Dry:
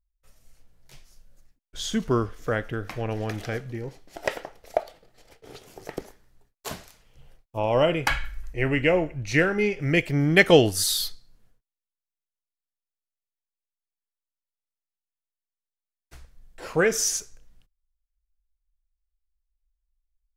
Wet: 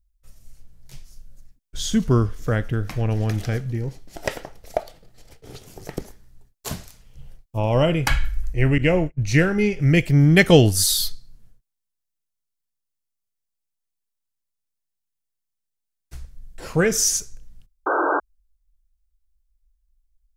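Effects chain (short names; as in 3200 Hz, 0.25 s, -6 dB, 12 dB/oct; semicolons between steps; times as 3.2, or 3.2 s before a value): 17.86–18.2 painted sound noise 280–1600 Hz -21 dBFS; tone controls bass +11 dB, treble +6 dB; 8.78–9.23 gate -22 dBFS, range -33 dB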